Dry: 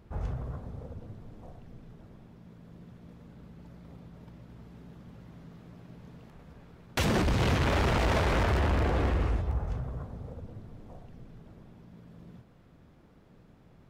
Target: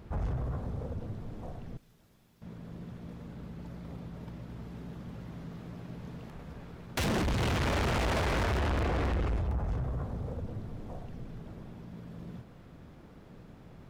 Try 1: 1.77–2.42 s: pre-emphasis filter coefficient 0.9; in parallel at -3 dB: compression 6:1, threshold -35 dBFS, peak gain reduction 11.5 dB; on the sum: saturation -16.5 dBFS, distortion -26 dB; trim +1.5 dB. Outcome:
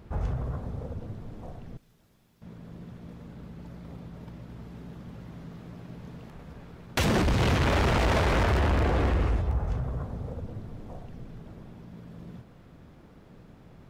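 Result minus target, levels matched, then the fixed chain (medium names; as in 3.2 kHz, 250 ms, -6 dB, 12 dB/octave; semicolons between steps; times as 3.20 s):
saturation: distortion -16 dB
1.77–2.42 s: pre-emphasis filter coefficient 0.9; in parallel at -3 dB: compression 6:1, threshold -35 dBFS, peak gain reduction 11.5 dB; on the sum: saturation -28.5 dBFS, distortion -10 dB; trim +1.5 dB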